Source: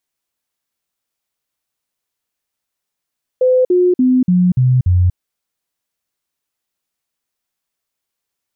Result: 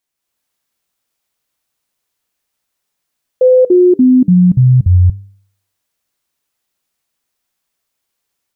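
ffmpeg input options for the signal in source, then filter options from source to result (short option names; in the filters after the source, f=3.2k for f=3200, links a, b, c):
-f lavfi -i "aevalsrc='0.376*clip(min(mod(t,0.29),0.24-mod(t,0.29))/0.005,0,1)*sin(2*PI*509*pow(2,-floor(t/0.29)/2)*mod(t,0.29))':d=1.74:s=44100"
-af "bandreject=f=98.8:t=h:w=4,bandreject=f=197.6:t=h:w=4,bandreject=f=296.4:t=h:w=4,bandreject=f=395.2:t=h:w=4,bandreject=f=494:t=h:w=4,dynaudnorm=f=170:g=3:m=6dB"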